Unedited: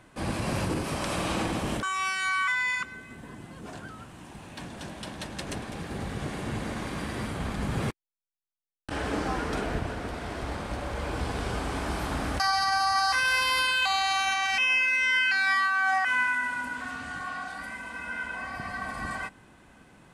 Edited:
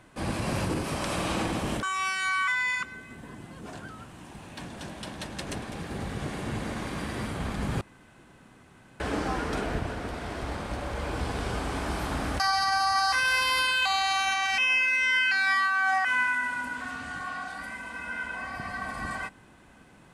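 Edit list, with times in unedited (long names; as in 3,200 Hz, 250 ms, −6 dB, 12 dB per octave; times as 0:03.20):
0:07.81–0:09.00: fill with room tone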